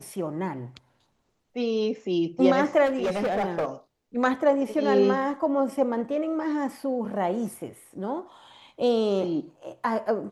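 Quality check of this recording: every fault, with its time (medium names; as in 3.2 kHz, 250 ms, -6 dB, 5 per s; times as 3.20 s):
2.85–3.66 s: clipped -22 dBFS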